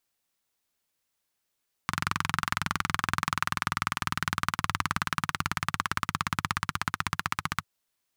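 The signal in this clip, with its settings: single-cylinder engine model, changing speed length 5.75 s, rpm 2700, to 1800, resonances 100/150/1200 Hz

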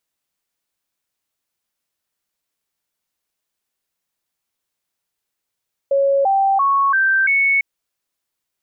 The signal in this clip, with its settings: stepped sine 553 Hz up, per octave 2, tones 5, 0.34 s, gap 0.00 s -12.5 dBFS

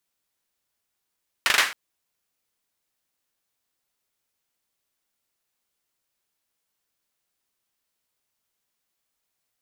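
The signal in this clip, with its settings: hand clap length 0.27 s, apart 40 ms, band 1800 Hz, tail 0.37 s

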